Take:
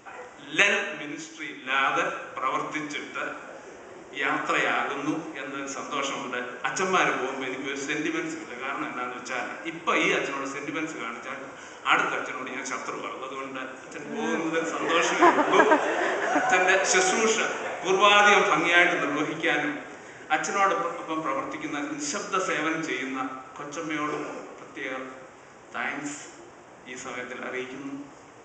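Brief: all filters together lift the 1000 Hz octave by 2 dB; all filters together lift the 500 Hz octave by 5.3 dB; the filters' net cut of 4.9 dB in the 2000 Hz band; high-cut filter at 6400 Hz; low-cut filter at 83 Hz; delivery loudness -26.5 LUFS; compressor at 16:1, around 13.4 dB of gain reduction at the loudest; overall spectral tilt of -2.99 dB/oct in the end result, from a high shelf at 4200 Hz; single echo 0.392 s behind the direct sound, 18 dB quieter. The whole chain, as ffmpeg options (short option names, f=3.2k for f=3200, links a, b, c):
-af "highpass=83,lowpass=6.4k,equalizer=f=500:t=o:g=6.5,equalizer=f=1k:t=o:g=3,equalizer=f=2k:t=o:g=-6.5,highshelf=f=4.2k:g=-8.5,acompressor=threshold=-23dB:ratio=16,aecho=1:1:392:0.126,volume=3.5dB"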